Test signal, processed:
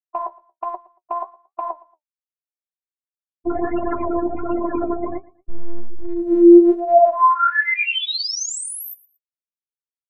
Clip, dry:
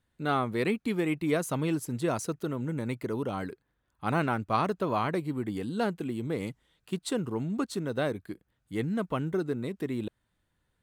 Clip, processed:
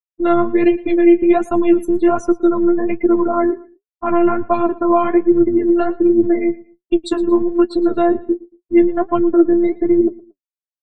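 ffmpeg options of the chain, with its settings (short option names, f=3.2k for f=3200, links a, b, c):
-filter_complex "[0:a]afftfilt=real='re*gte(hypot(re,im),0.02)':imag='im*gte(hypot(re,im),0.02)':win_size=1024:overlap=0.75,acrossover=split=330[a][b];[b]acompressor=threshold=-39dB:ratio=4[c];[a][c]amix=inputs=2:normalize=0,bandpass=f=580:t=q:w=0.53:csg=0,apsyclip=33dB,dynaudnorm=f=160:g=13:m=7dB,afftfilt=real='hypot(re,im)*cos(PI*b)':imag='0':win_size=512:overlap=0.75,flanger=delay=8.2:depth=6.5:regen=43:speed=1.3:shape=sinusoidal,asplit=2[d][e];[e]aecho=0:1:115|230:0.0891|0.025[f];[d][f]amix=inputs=2:normalize=0"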